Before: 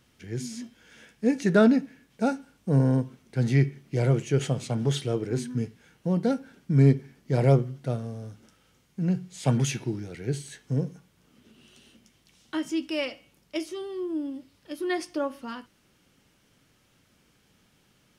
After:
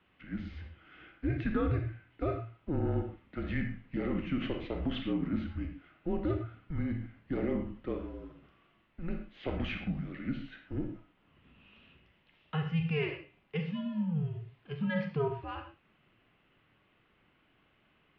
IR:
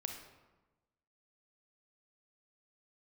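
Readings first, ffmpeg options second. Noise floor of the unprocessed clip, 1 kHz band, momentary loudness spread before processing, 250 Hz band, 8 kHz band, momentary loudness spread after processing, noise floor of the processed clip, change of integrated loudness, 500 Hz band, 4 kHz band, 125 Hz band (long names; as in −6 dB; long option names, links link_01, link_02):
−65 dBFS, −7.0 dB, 16 LU, −7.5 dB, below −35 dB, 12 LU, −70 dBFS, −9.0 dB, −9.0 dB, −8.0 dB, −10.5 dB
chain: -filter_complex "[0:a]lowshelf=frequency=270:width_type=q:width=1.5:gain=-6.5,alimiter=limit=-20dB:level=0:latency=1:release=99[link_01];[1:a]atrim=start_sample=2205,atrim=end_sample=6174[link_02];[link_01][link_02]afir=irnorm=-1:irlink=0,highpass=frequency=160:width_type=q:width=0.5412,highpass=frequency=160:width_type=q:width=1.307,lowpass=frequency=3300:width_type=q:width=0.5176,lowpass=frequency=3300:width_type=q:width=0.7071,lowpass=frequency=3300:width_type=q:width=1.932,afreqshift=-160"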